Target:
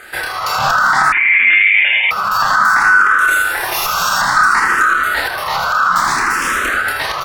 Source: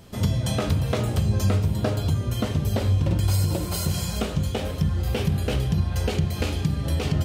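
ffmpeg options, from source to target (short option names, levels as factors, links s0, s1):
-filter_complex "[0:a]highpass=64,asettb=1/sr,asplit=3[s0][s1][s2];[s0]atrim=end=5.924[s3];[s1]atrim=start=5.92:end=6.74,asetpts=PTS-STARTPTS,afade=t=in:d=0.004:c=qsin,afade=t=out:st=0.816:d=0.004:c=qsin,aeval=exprs='0.0422*(abs(mod(val(0)/0.0422+3,4)-2)-1)':c=same[s4];[s2]atrim=start=6.736[s5];[s3][s4]acrossfade=d=0.004:c1=hsin:c2=qsin[s6];[s6][s5]acrossfade=d=0.004:c1=qsin:c2=hsin,aeval=exprs='val(0)*sin(2*PI*1400*n/s)':c=same,asettb=1/sr,asplit=3[s7][s8][s9];[s7]atrim=end=4.344[s10];[s8]atrim=start=4.34:end=4.94,asetpts=PTS-STARTPTS,afade=t=in:d=0.004:c=qsin,afade=t=out:st=0.596:d=0.004:c=qsin,asoftclip=type=hard:threshold=0.1[s11];[s9]atrim=start=4.936[s12];[s10][s11]acrossfade=d=0.004:c1=hsin:c2=qsin[s13];[s13][s12]acrossfade=d=0.004:c1=qsin:c2=hsin,asplit=2[s14][s15];[s15]adelay=28,volume=0.631[s16];[s14][s16]amix=inputs=2:normalize=0,asplit=2[s17][s18];[s18]asplit=7[s19][s20][s21][s22][s23][s24][s25];[s19]adelay=80,afreqshift=-98,volume=0.501[s26];[s20]adelay=160,afreqshift=-196,volume=0.266[s27];[s21]adelay=240,afreqshift=-294,volume=0.141[s28];[s22]adelay=320,afreqshift=-392,volume=0.075[s29];[s23]adelay=400,afreqshift=-490,volume=0.0394[s30];[s24]adelay=480,afreqshift=-588,volume=0.0209[s31];[s25]adelay=560,afreqshift=-686,volume=0.0111[s32];[s26][s27][s28][s29][s30][s31][s32]amix=inputs=7:normalize=0[s33];[s17][s33]amix=inputs=2:normalize=0,asettb=1/sr,asplit=3[s34][s35][s36];[s34]atrim=end=1.124[s37];[s35]atrim=start=1.12:end=2.11,asetpts=PTS-STARTPTS,afade=t=in:d=0.004:c=qsin,afade=t=out:st=0.986:d=0.004:c=qsin,lowpass=f=3100:t=q:w=0.5098,lowpass=f=3100:t=q:w=0.6013,lowpass=f=3100:t=q:w=0.9,lowpass=f=3100:t=q:w=2.563,afreqshift=-3600[s38];[s36]atrim=start=2.106[s39];[s37][s38]acrossfade=d=0.004:c1=hsin:c2=qsin[s40];[s40][s39]acrossfade=d=0.004:c1=qsin:c2=hsin,alimiter=level_in=9.44:limit=0.891:release=50:level=0:latency=1,asplit=2[s41][s42];[s42]afreqshift=0.59[s43];[s41][s43]amix=inputs=2:normalize=1,volume=0.891"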